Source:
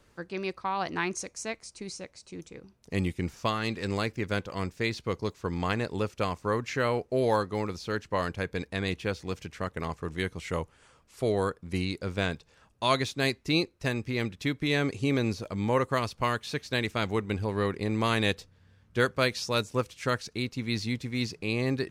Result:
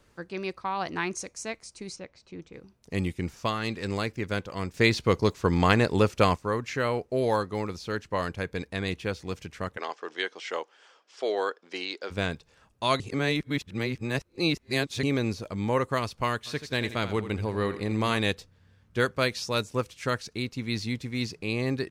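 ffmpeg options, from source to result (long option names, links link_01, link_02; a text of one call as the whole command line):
ffmpeg -i in.wav -filter_complex "[0:a]asplit=3[link_01][link_02][link_03];[link_01]afade=type=out:start_time=1.95:duration=0.02[link_04];[link_02]lowpass=3600,afade=type=in:start_time=1.95:duration=0.02,afade=type=out:start_time=2.52:duration=0.02[link_05];[link_03]afade=type=in:start_time=2.52:duration=0.02[link_06];[link_04][link_05][link_06]amix=inputs=3:normalize=0,asplit=3[link_07][link_08][link_09];[link_07]afade=type=out:start_time=9.76:duration=0.02[link_10];[link_08]highpass=frequency=350:width=0.5412,highpass=frequency=350:width=1.3066,equalizer=frequency=780:width_type=q:width=4:gain=4,equalizer=frequency=1600:width_type=q:width=4:gain=5,equalizer=frequency=3200:width_type=q:width=4:gain=7,equalizer=frequency=5200:width_type=q:width=4:gain=6,lowpass=frequency=6900:width=0.5412,lowpass=frequency=6900:width=1.3066,afade=type=in:start_time=9.76:duration=0.02,afade=type=out:start_time=12.1:duration=0.02[link_11];[link_09]afade=type=in:start_time=12.1:duration=0.02[link_12];[link_10][link_11][link_12]amix=inputs=3:normalize=0,asplit=3[link_13][link_14][link_15];[link_13]afade=type=out:start_time=16.45:duration=0.02[link_16];[link_14]aecho=1:1:83|166|249|332:0.251|0.0879|0.0308|0.0108,afade=type=in:start_time=16.45:duration=0.02,afade=type=out:start_time=18.17:duration=0.02[link_17];[link_15]afade=type=in:start_time=18.17:duration=0.02[link_18];[link_16][link_17][link_18]amix=inputs=3:normalize=0,asplit=5[link_19][link_20][link_21][link_22][link_23];[link_19]atrim=end=4.742[link_24];[link_20]atrim=start=4.738:end=6.362,asetpts=PTS-STARTPTS,volume=8dB[link_25];[link_21]atrim=start=6.358:end=13.002[link_26];[link_22]atrim=start=12.998:end=15.032,asetpts=PTS-STARTPTS,areverse[link_27];[link_23]atrim=start=15.028[link_28];[link_24][link_25]acrossfade=duration=0.004:curve1=hsin:curve2=hsin[link_29];[link_29][link_26]acrossfade=duration=0.004:curve1=hsin:curve2=hsin[link_30];[link_30][link_27]acrossfade=duration=0.004:curve1=hsin:curve2=hsin[link_31];[link_31][link_28]acrossfade=duration=0.004:curve1=hsin:curve2=hsin" out.wav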